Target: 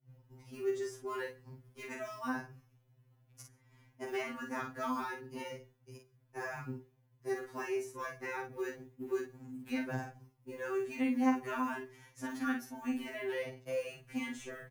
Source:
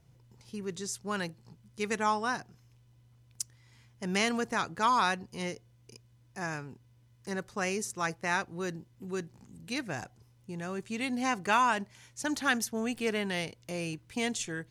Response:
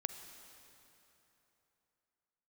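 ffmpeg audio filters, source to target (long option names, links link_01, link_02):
-filter_complex "[0:a]asplit=2[link_01][link_02];[link_02]acrusher=bits=4:mode=log:mix=0:aa=0.000001,volume=-4.5dB[link_03];[link_01][link_03]amix=inputs=2:normalize=0,equalizer=frequency=250:width_type=o:width=1:gain=4,equalizer=frequency=4000:width_type=o:width=1:gain=-10,equalizer=frequency=8000:width_type=o:width=1:gain=-9,acrossover=split=330|2600[link_04][link_05][link_06];[link_04]acompressor=threshold=-39dB:ratio=4[link_07];[link_05]acompressor=threshold=-37dB:ratio=4[link_08];[link_06]acompressor=threshold=-51dB:ratio=4[link_09];[link_07][link_08][link_09]amix=inputs=3:normalize=0,agate=range=-33dB:threshold=-51dB:ratio=3:detection=peak,asplit=2[link_10][link_11];[link_11]adelay=46,volume=-5dB[link_12];[link_10][link_12]amix=inputs=2:normalize=0,asplit=2[link_13][link_14];[1:a]atrim=start_sample=2205,atrim=end_sample=6615[link_15];[link_14][link_15]afir=irnorm=-1:irlink=0,volume=-3dB[link_16];[link_13][link_16]amix=inputs=2:normalize=0,afftfilt=real='re*2.45*eq(mod(b,6),0)':imag='im*2.45*eq(mod(b,6),0)':win_size=2048:overlap=0.75,volume=-4.5dB"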